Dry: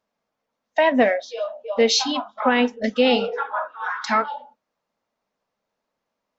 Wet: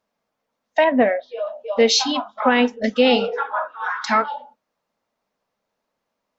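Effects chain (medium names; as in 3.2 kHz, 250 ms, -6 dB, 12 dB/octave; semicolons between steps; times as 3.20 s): 0.84–1.47 s: distance through air 430 m; trim +2 dB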